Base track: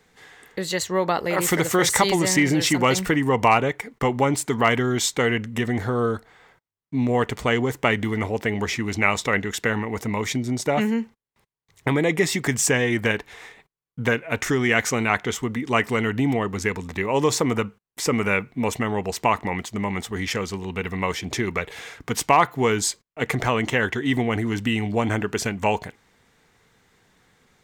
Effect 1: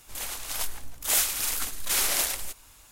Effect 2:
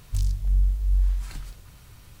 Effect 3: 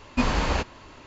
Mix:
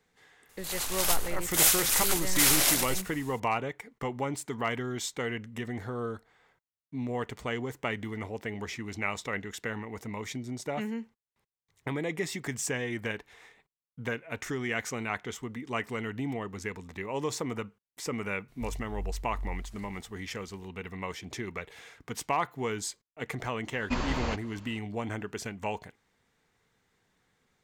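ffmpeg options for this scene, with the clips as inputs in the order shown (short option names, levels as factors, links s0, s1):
-filter_complex "[0:a]volume=0.251[s0];[1:a]dynaudnorm=f=120:g=5:m=3.76,atrim=end=2.91,asetpts=PTS-STARTPTS,volume=0.473,afade=t=in:d=0.004:c=hsin,afade=t=out:st=2.906:d=0.004:c=hsin,adelay=490[s1];[2:a]atrim=end=2.2,asetpts=PTS-STARTPTS,volume=0.178,afade=t=in:d=0.004:c=hsin,afade=t=out:st=2.196:d=0.004:c=hsin,adelay=18480[s2];[3:a]atrim=end=1.06,asetpts=PTS-STARTPTS,volume=0.422,afade=t=in:d=0.004:c=hsin,afade=t=out:st=1.056:d=0.004:c=hsin,adelay=23730[s3];[s0][s1][s2][s3]amix=inputs=4:normalize=0"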